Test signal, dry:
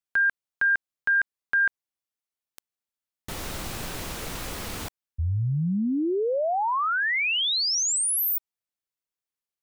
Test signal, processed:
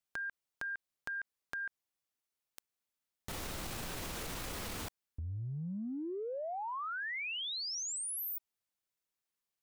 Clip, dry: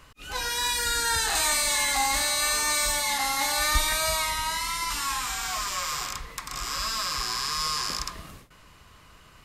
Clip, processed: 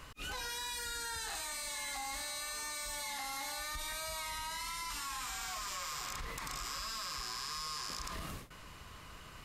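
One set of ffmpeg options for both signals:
ffmpeg -i in.wav -af "acompressor=threshold=-39dB:ratio=16:attack=3.8:release=29:knee=1:detection=rms,volume=1dB" out.wav

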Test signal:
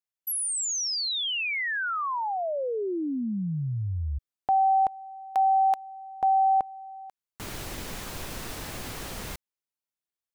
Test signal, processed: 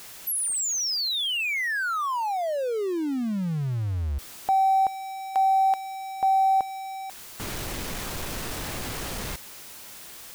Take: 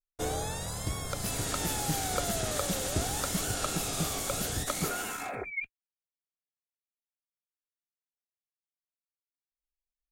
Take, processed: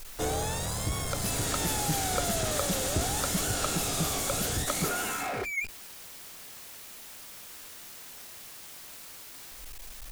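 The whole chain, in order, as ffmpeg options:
ffmpeg -i in.wav -af "aeval=exprs='val(0)+0.5*0.02*sgn(val(0))':channel_layout=same" out.wav

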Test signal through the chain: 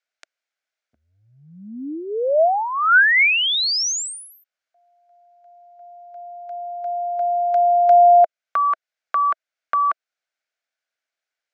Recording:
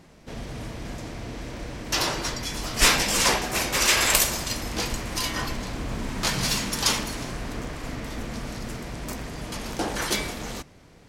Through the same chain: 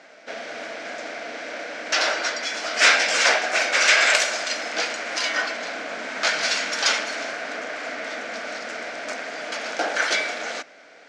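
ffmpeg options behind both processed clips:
ffmpeg -i in.wav -filter_complex "[0:a]asplit=2[link_01][link_02];[link_02]acompressor=threshold=-32dB:ratio=6,volume=-1dB[link_03];[link_01][link_03]amix=inputs=2:normalize=0,highpass=frequency=330:width=0.5412,highpass=frequency=330:width=1.3066,equalizer=frequency=370:width_type=q:width=4:gain=-10,equalizer=frequency=650:width_type=q:width=4:gain=8,equalizer=frequency=1000:width_type=q:width=4:gain=-7,equalizer=frequency=1500:width_type=q:width=4:gain=10,equalizer=frequency=2200:width_type=q:width=4:gain=6,lowpass=frequency=6600:width=0.5412,lowpass=frequency=6600:width=1.3066" out.wav

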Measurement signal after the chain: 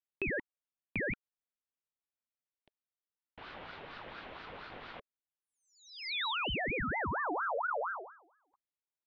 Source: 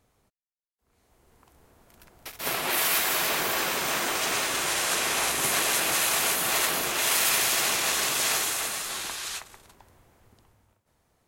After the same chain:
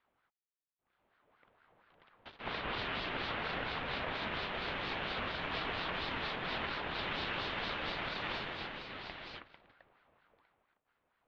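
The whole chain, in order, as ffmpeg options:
ffmpeg -i in.wav -af "lowshelf=frequency=160:width_type=q:width=1.5:gain=-11,highpass=frequency=220:width_type=q:width=0.5412,highpass=frequency=220:width_type=q:width=1.307,lowpass=frequency=3200:width_type=q:width=0.5176,lowpass=frequency=3200:width_type=q:width=0.7071,lowpass=frequency=3200:width_type=q:width=1.932,afreqshift=-300,acompressor=threshold=-25dB:ratio=6,aeval=exprs='val(0)*sin(2*PI*1000*n/s+1000*0.5/4.3*sin(2*PI*4.3*n/s))':channel_layout=same,volume=-5dB" out.wav

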